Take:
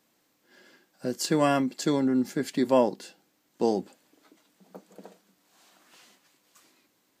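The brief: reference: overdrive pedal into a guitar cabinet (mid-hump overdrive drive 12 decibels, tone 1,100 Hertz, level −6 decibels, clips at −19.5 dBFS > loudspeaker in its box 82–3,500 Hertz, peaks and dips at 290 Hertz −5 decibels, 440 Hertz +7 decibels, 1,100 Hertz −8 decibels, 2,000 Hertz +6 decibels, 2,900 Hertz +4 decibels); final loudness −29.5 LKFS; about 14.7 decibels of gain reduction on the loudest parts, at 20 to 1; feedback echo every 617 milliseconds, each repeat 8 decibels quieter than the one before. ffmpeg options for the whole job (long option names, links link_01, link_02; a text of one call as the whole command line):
ffmpeg -i in.wav -filter_complex "[0:a]acompressor=threshold=-30dB:ratio=20,aecho=1:1:617|1234|1851|2468|3085:0.398|0.159|0.0637|0.0255|0.0102,asplit=2[link_01][link_02];[link_02]highpass=frequency=720:poles=1,volume=12dB,asoftclip=type=tanh:threshold=-19.5dB[link_03];[link_01][link_03]amix=inputs=2:normalize=0,lowpass=frequency=1100:poles=1,volume=-6dB,highpass=82,equalizer=frequency=290:width_type=q:width=4:gain=-5,equalizer=frequency=440:width_type=q:width=4:gain=7,equalizer=frequency=1100:width_type=q:width=4:gain=-8,equalizer=frequency=2000:width_type=q:width=4:gain=6,equalizer=frequency=2900:width_type=q:width=4:gain=4,lowpass=frequency=3500:width=0.5412,lowpass=frequency=3500:width=1.3066,volume=7.5dB" out.wav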